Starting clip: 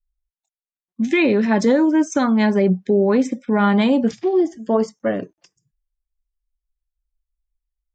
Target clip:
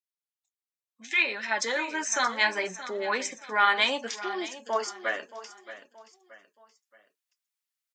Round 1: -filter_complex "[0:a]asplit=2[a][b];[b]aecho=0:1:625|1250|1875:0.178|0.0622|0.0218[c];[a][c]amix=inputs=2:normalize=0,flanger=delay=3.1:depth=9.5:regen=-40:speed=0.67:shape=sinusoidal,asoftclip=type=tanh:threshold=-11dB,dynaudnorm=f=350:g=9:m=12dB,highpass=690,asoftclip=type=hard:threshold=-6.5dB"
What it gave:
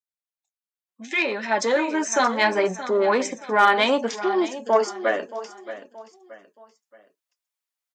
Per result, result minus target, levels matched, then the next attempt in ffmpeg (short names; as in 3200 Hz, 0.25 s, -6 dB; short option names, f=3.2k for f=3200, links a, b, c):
soft clip: distortion +16 dB; 500 Hz band +6.0 dB
-filter_complex "[0:a]asplit=2[a][b];[b]aecho=0:1:625|1250|1875:0.178|0.0622|0.0218[c];[a][c]amix=inputs=2:normalize=0,flanger=delay=3.1:depth=9.5:regen=-40:speed=0.67:shape=sinusoidal,asoftclip=type=tanh:threshold=-2dB,dynaudnorm=f=350:g=9:m=12dB,highpass=690,asoftclip=type=hard:threshold=-6.5dB"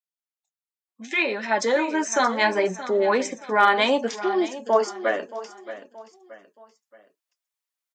500 Hz band +6.0 dB
-filter_complex "[0:a]asplit=2[a][b];[b]aecho=0:1:625|1250|1875:0.178|0.0622|0.0218[c];[a][c]amix=inputs=2:normalize=0,flanger=delay=3.1:depth=9.5:regen=-40:speed=0.67:shape=sinusoidal,asoftclip=type=tanh:threshold=-2dB,dynaudnorm=f=350:g=9:m=12dB,highpass=1.4k,asoftclip=type=hard:threshold=-6.5dB"